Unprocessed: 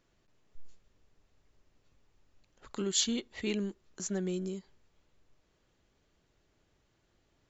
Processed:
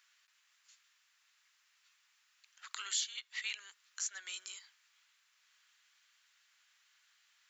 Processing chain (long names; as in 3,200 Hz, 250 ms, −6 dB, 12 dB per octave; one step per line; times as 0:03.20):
high-pass filter 1,400 Hz 24 dB per octave
downward compressor 3 to 1, threshold −47 dBFS, peak gain reduction 16.5 dB
level +9 dB